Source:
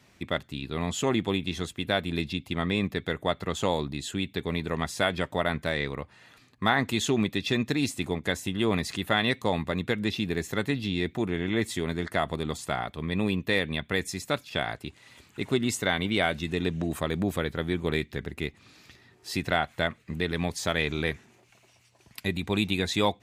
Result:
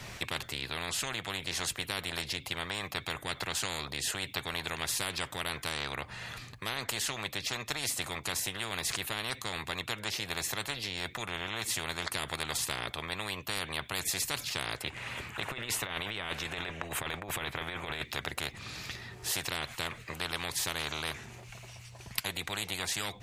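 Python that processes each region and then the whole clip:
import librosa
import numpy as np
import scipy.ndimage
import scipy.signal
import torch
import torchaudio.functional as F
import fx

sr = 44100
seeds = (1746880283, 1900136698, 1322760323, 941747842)

y = fx.chain(x, sr, fx.over_compress(threshold_db=-30.0, ratio=-0.5),
    fx.high_shelf_res(hz=3200.0, db=-8.0, q=1.5), at=(14.82, 18.05))
y = fx.low_shelf_res(y, sr, hz=180.0, db=13.0, q=3.0)
y = fx.rider(y, sr, range_db=10, speed_s=0.5)
y = fx.spectral_comp(y, sr, ratio=10.0)
y = F.gain(torch.from_numpy(y), -4.0).numpy()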